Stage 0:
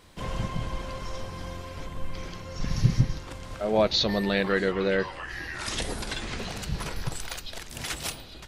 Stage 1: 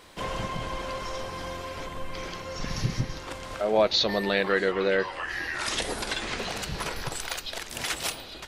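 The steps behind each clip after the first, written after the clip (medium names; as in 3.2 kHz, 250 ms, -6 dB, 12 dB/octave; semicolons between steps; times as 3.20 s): tone controls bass -10 dB, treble -2 dB; in parallel at -0.5 dB: compression, threshold -35 dBFS, peak gain reduction 15.5 dB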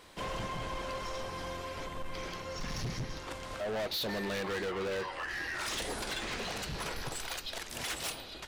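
hard clipper -28.5 dBFS, distortion -5 dB; trim -4 dB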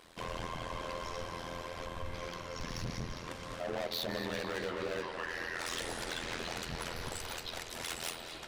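AM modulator 84 Hz, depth 85%; on a send: tape echo 225 ms, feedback 90%, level -8 dB, low-pass 5.8 kHz; on the sum: trim +1 dB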